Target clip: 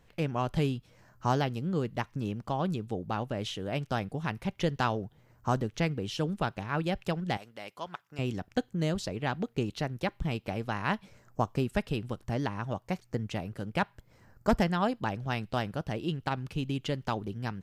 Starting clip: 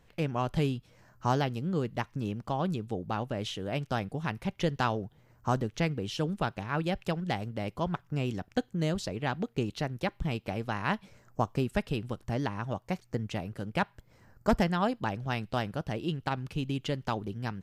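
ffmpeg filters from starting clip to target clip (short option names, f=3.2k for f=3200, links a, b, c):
-filter_complex "[0:a]asettb=1/sr,asplit=3[a][b][c];[a]atrim=end=7.374[d];[b]atrim=start=7.37:end=8.19,asetpts=PTS-STARTPTS,afade=t=in:d=0.004:c=qsin,afade=t=out:st=0.816:d=0.004:c=qsin,highpass=f=1.3k:p=1[e];[c]atrim=start=8.186[f];[d][e]acrossfade=d=0.004:c1=hsin:c2=qsin[g];[g][f]acrossfade=d=0.004:c1=qsin:c2=hsin"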